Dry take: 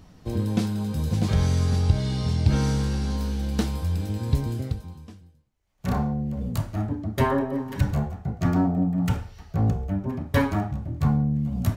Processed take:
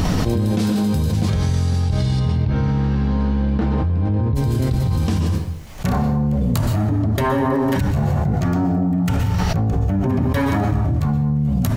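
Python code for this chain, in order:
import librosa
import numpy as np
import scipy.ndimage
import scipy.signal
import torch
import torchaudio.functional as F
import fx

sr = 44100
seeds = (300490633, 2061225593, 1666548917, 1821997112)

y = fx.lowpass(x, sr, hz=fx.line((2.19, 2600.0), (4.35, 1300.0)), slope=12, at=(2.19, 4.35), fade=0.02)
y = fx.rev_plate(y, sr, seeds[0], rt60_s=0.61, hf_ratio=0.8, predelay_ms=110, drr_db=8.5)
y = fx.env_flatten(y, sr, amount_pct=100)
y = y * 10.0 ** (-4.0 / 20.0)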